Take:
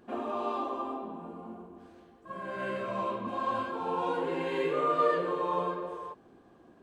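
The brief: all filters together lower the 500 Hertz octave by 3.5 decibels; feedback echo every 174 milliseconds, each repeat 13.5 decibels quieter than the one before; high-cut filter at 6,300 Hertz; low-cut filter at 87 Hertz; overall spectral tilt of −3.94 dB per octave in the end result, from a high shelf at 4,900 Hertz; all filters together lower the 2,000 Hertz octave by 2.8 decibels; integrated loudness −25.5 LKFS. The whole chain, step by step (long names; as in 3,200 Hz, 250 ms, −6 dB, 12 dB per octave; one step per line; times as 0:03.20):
high-pass filter 87 Hz
low-pass filter 6,300 Hz
parametric band 500 Hz −4 dB
parametric band 2,000 Hz −4.5 dB
high-shelf EQ 4,900 Hz +6.5 dB
repeating echo 174 ms, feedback 21%, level −13.5 dB
level +8.5 dB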